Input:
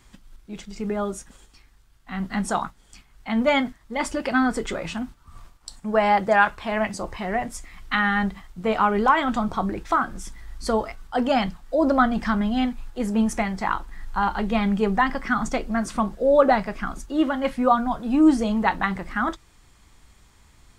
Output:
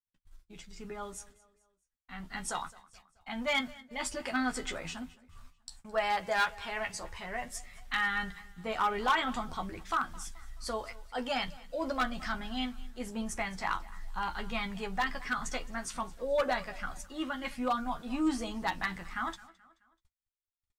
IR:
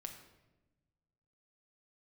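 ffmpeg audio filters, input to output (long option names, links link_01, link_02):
-filter_complex "[0:a]equalizer=frequency=300:width_type=o:width=2.9:gain=-8,agate=range=-48dB:threshold=-46dB:ratio=16:detection=peak,asplit=2[link_01][link_02];[link_02]adelay=12,volume=-5.5dB[link_03];[link_01][link_03]amix=inputs=2:normalize=0,asoftclip=type=hard:threshold=-14.5dB,asplit=2[link_04][link_05];[link_05]aecho=0:1:215|430|645:0.0891|0.0419|0.0197[link_06];[link_04][link_06]amix=inputs=2:normalize=0,aphaser=in_gain=1:out_gain=1:delay=2.2:decay=0.22:speed=0.22:type=sinusoidal,adynamicequalizer=threshold=0.02:dfrequency=2000:dqfactor=0.7:tfrequency=2000:tqfactor=0.7:attack=5:release=100:ratio=0.375:range=2.5:mode=boostabove:tftype=highshelf,volume=-9dB"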